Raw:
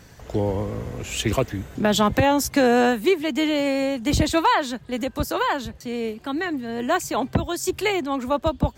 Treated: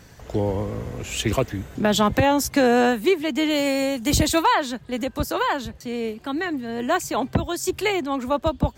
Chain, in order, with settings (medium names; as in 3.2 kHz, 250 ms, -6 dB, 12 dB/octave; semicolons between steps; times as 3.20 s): 3.49–4.41 s: treble shelf 4.8 kHz -> 7 kHz +11 dB